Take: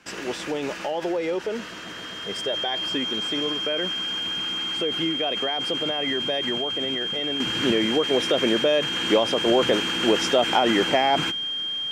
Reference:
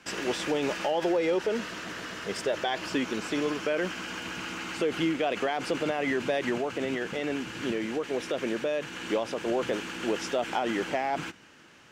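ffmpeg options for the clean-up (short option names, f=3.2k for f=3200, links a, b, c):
-af "bandreject=f=3.2k:w=30,asetnsamples=n=441:p=0,asendcmd='7.4 volume volume -8.5dB',volume=0dB"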